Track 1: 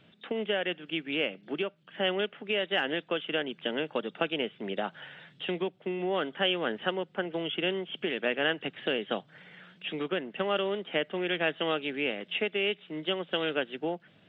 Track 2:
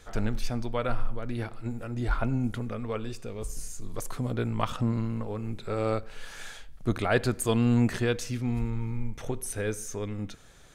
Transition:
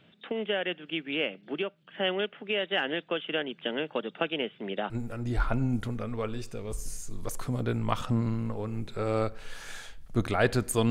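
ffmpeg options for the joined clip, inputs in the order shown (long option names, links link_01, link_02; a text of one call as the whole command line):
ffmpeg -i cue0.wav -i cue1.wav -filter_complex "[0:a]apad=whole_dur=10.9,atrim=end=10.9,atrim=end=4.902[link_01];[1:a]atrim=start=1.608:end=7.61[link_02];[link_01][link_02]acrossfade=duration=0.004:curve1=hsin:curve2=hsin" out.wav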